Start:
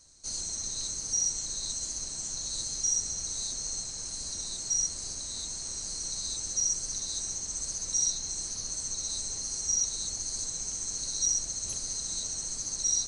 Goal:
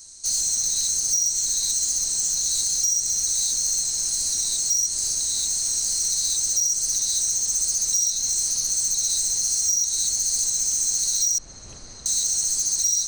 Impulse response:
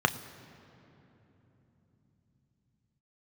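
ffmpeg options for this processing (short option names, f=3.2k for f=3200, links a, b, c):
-filter_complex "[0:a]asettb=1/sr,asplit=3[a][b][c];[a]atrim=end=11.384[d];[b]atrim=start=11.38:end=12.06,asetpts=PTS-STARTPTS,afade=t=in:d=0.004:c=qsin,afade=t=out:st=0.676:d=0.004:c=qsin,lowpass=1.7k[e];[c]atrim=start=12.056[f];[d][e]acrossfade=d=0.004:c1=hsin:c2=qsin[g];[g][f]acrossfade=d=0.004:c1=qsin:c2=hsin,acompressor=threshold=-31dB:ratio=6,asoftclip=type=tanh:threshold=-29dB,crystalizer=i=4:c=0,volume=2.5dB"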